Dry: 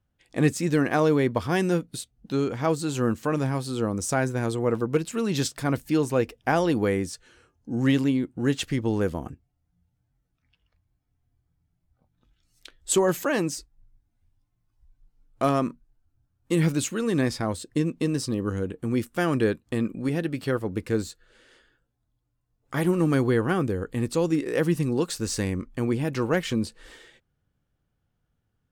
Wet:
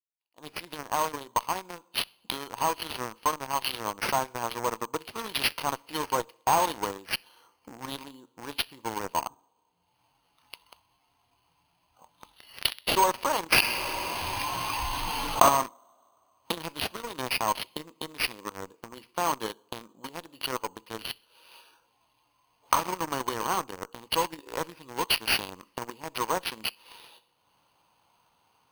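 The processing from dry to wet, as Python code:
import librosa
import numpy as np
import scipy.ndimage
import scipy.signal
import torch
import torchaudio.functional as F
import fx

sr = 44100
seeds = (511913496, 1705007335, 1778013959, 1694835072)

p1 = fx.fade_in_head(x, sr, length_s=4.37)
p2 = fx.recorder_agc(p1, sr, target_db=-16.0, rise_db_per_s=31.0, max_gain_db=30)
p3 = fx.double_bandpass(p2, sr, hz=2100.0, octaves=2.2)
p4 = fx.echo_feedback(p3, sr, ms=64, feedback_pct=36, wet_db=-21.0)
p5 = fx.rev_double_slope(p4, sr, seeds[0], early_s=0.51, late_s=3.3, knee_db=-21, drr_db=11.5)
p6 = fx.fuzz(p5, sr, gain_db=35.0, gate_db=-42.0)
p7 = p5 + F.gain(torch.from_numpy(p6), -6.0).numpy()
p8 = np.repeat(p7[::6], 6)[:len(p7)]
y = fx.env_flatten(p8, sr, amount_pct=70, at=(13.52, 15.49))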